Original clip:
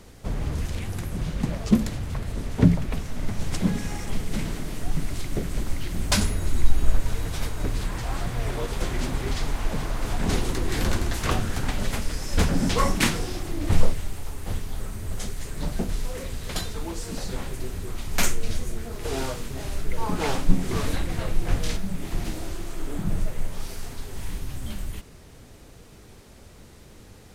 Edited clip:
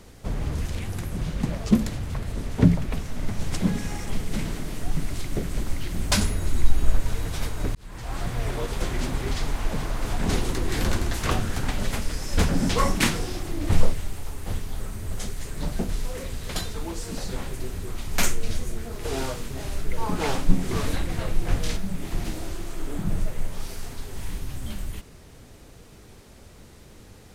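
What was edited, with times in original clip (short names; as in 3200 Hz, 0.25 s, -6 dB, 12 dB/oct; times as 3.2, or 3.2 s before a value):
7.75–8.26 fade in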